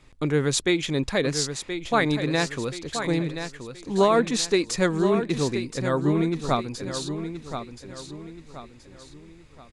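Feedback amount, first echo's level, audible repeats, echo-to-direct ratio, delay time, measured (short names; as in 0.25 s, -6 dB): 38%, -9.0 dB, 4, -8.5 dB, 1.026 s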